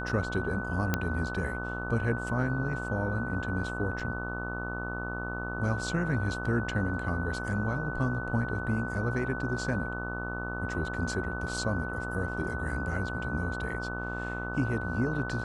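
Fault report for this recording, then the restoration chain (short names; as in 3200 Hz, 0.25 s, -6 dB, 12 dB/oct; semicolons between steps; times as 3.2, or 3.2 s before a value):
buzz 60 Hz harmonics 25 -37 dBFS
tone 1500 Hz -37 dBFS
0.94 pop -12 dBFS
4 gap 4.5 ms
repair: de-click; notch 1500 Hz, Q 30; de-hum 60 Hz, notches 25; interpolate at 4, 4.5 ms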